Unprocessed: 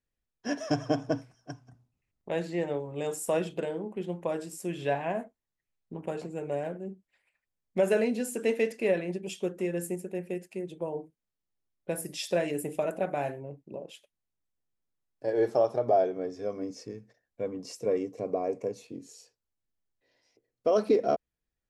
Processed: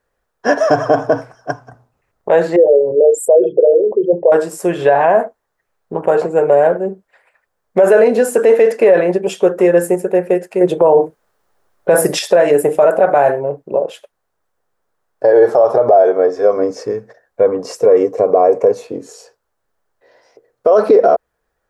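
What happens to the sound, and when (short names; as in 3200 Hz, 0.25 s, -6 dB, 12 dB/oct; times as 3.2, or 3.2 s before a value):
2.56–4.32 formant sharpening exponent 3
10.61–12.19 gain +8.5 dB
16.02–16.56 HPF 390 Hz -> 160 Hz 6 dB/oct
whole clip: band shelf 830 Hz +13.5 dB 2.4 oct; maximiser +13 dB; gain -1 dB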